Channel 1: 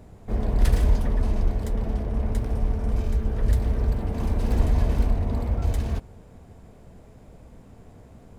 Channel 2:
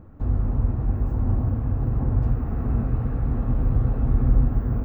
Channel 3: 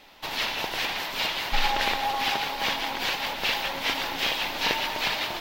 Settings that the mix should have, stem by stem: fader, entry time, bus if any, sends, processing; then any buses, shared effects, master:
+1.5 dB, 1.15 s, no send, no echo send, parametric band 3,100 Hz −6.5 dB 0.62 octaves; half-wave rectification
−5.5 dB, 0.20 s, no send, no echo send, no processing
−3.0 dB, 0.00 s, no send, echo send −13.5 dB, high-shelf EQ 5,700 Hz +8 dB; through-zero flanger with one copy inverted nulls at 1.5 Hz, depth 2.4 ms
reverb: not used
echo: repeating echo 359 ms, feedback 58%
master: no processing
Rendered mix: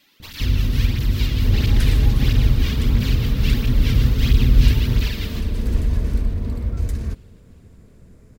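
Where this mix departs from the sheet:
stem 1: missing half-wave rectification
stem 2 −5.5 dB → +4.0 dB
master: extra parametric band 770 Hz −14.5 dB 0.83 octaves

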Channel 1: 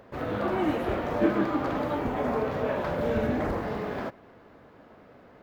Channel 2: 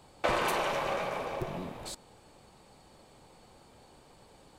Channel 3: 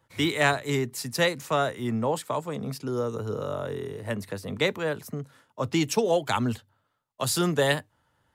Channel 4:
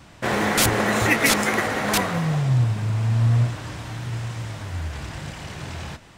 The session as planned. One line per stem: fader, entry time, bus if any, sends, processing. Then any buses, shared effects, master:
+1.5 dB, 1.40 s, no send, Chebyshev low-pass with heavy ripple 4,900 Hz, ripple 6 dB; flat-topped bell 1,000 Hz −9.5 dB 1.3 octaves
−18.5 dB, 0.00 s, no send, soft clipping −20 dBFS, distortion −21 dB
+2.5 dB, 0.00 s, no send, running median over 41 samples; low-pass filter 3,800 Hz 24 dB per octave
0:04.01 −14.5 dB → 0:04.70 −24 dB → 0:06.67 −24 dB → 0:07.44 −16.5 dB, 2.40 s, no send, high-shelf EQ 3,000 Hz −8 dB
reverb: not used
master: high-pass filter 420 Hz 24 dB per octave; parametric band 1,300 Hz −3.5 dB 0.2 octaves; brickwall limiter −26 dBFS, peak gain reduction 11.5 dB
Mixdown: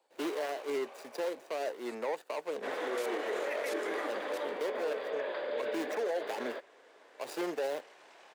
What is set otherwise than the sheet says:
stem 1: entry 1.40 s → 2.50 s
stem 3: missing low-pass filter 3,800 Hz 24 dB per octave

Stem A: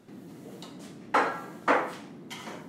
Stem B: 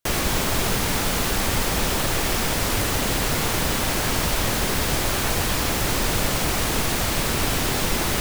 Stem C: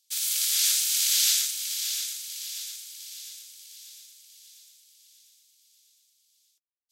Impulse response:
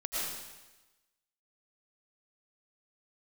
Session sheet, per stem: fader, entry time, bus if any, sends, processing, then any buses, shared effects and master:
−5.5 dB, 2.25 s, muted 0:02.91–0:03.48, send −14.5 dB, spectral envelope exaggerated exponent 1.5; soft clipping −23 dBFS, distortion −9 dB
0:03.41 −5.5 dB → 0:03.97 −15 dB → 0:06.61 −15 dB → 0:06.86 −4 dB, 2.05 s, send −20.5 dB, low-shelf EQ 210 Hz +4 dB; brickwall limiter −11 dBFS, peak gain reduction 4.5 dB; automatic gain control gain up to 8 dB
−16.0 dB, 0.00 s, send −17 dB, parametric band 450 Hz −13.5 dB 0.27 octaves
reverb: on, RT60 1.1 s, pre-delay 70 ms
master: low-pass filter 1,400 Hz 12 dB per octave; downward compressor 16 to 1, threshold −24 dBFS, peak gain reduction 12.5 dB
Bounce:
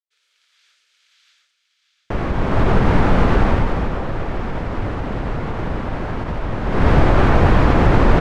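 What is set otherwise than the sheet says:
stem B −5.5 dB → +1.5 dB
stem C: missing parametric band 450 Hz −13.5 dB 0.27 octaves
master: missing downward compressor 16 to 1, threshold −24 dBFS, peak gain reduction 12.5 dB

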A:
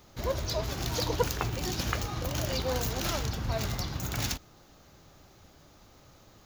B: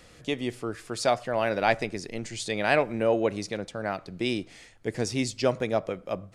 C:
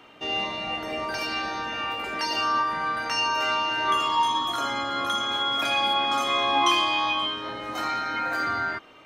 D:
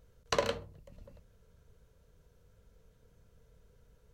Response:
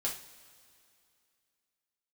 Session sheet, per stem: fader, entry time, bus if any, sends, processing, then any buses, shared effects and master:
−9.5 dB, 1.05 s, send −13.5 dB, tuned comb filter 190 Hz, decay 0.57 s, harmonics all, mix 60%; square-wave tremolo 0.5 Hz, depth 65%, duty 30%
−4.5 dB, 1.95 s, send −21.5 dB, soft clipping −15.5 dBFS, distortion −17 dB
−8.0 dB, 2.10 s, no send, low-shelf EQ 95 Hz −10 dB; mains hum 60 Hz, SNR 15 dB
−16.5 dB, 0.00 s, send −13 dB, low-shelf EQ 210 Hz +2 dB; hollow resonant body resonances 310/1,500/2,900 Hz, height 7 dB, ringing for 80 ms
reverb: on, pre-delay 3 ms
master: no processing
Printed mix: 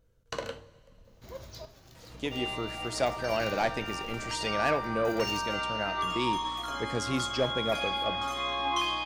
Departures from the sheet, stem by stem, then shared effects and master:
stem D −16.5 dB → −9.5 dB
reverb return +7.5 dB

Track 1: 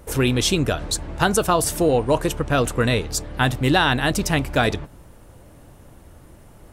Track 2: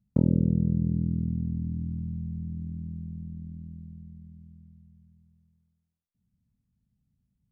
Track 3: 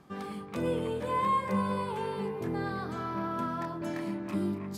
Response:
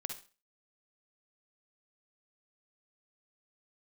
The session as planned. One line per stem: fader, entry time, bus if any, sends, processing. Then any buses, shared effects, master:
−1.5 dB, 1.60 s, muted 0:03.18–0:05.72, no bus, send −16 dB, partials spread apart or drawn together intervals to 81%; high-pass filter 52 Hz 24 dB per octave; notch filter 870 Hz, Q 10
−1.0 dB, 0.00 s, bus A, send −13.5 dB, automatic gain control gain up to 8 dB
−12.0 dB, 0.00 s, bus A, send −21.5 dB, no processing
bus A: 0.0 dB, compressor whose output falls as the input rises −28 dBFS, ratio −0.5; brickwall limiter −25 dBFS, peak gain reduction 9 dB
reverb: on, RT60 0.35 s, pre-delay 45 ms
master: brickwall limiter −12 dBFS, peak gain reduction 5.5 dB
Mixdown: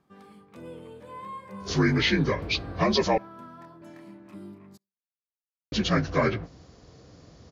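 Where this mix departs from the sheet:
stem 2: muted
reverb return −10.0 dB

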